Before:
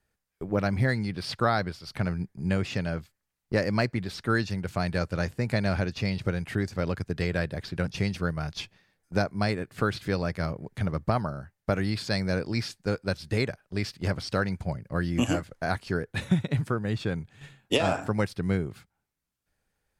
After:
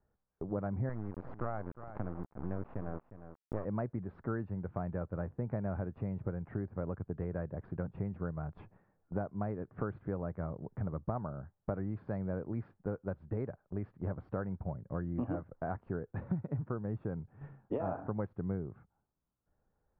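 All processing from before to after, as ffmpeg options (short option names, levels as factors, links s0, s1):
-filter_complex "[0:a]asettb=1/sr,asplit=3[s0][s1][s2];[s0]atrim=end=0.894[s3];[s1]atrim=start=0.89:end=3.65,asetpts=PTS-STARTPTS,afade=t=in:d=0.004:c=qsin,afade=t=out:st=2.756:d=0.004:c=qsin,acrusher=bits=3:dc=4:mix=0:aa=0.000001,aecho=1:1:356:0.119,atrim=end_sample=121716[s4];[s2]atrim=start=3.646[s5];[s3][s4]acrossfade=d=0.004:c1=hsin:c2=qsin[s6];[s6][s5]acrossfade=d=0.004:c1=qsin:c2=hsin,lowpass=f=1200:w=0.5412,lowpass=f=1200:w=1.3066,acompressor=threshold=0.00794:ratio=2,volume=1.12"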